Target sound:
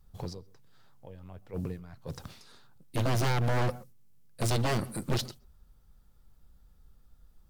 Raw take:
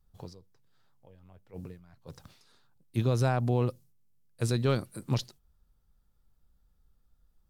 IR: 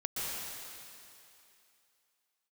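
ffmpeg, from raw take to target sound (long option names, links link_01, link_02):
-filter_complex "[0:a]aeval=exprs='0.0422*(abs(mod(val(0)/0.0422+3,4)-2)-1)':channel_layout=same,asplit=2[link_01][link_02];[1:a]atrim=start_sample=2205,atrim=end_sample=6174,lowpass=frequency=1300:poles=1[link_03];[link_02][link_03]afir=irnorm=-1:irlink=0,volume=-15.5dB[link_04];[link_01][link_04]amix=inputs=2:normalize=0,aeval=exprs='0.0501*(cos(1*acos(clip(val(0)/0.0501,-1,1)))-cos(1*PI/2))+0.0112*(cos(2*acos(clip(val(0)/0.0501,-1,1)))-cos(2*PI/2))+0.00631*(cos(5*acos(clip(val(0)/0.0501,-1,1)))-cos(5*PI/2))':channel_layout=same,volume=3.5dB"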